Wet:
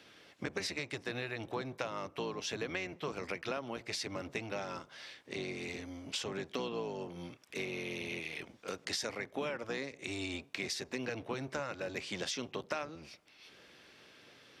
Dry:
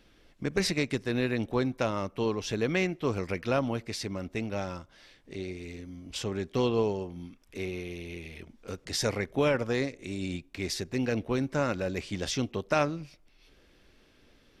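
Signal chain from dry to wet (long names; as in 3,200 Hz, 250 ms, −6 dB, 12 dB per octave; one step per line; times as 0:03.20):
sub-octave generator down 1 octave, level +3 dB
meter weighting curve A
downward compressor 6 to 1, threshold −41 dBFS, peak gain reduction 18.5 dB
level +5.5 dB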